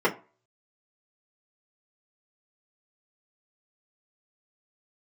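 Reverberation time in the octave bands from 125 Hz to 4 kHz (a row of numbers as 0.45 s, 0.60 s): 0.35 s, 0.30 s, 0.35 s, 0.35 s, 0.30 s, 0.20 s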